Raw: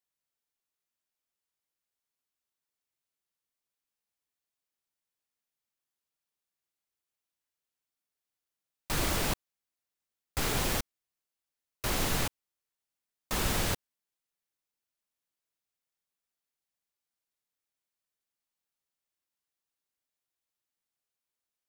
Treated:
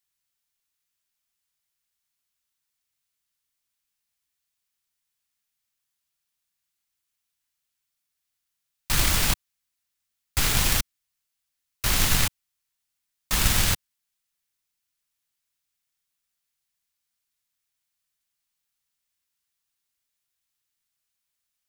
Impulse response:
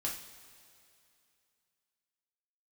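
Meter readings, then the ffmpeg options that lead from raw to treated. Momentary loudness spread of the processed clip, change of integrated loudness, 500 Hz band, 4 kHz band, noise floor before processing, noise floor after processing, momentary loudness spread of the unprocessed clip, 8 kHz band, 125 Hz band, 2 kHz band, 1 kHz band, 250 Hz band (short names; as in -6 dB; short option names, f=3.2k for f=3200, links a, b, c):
9 LU, +8.5 dB, -1.5 dB, +9.0 dB, under -85 dBFS, -82 dBFS, 9 LU, +10.0 dB, +7.5 dB, +7.5 dB, +3.5 dB, +2.5 dB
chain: -filter_complex "[0:a]equalizer=f=450:t=o:w=2.4:g=-12.5,asplit=2[a][b];[b]acrusher=bits=3:mix=0:aa=0.5,volume=-9dB[c];[a][c]amix=inputs=2:normalize=0,volume=9dB"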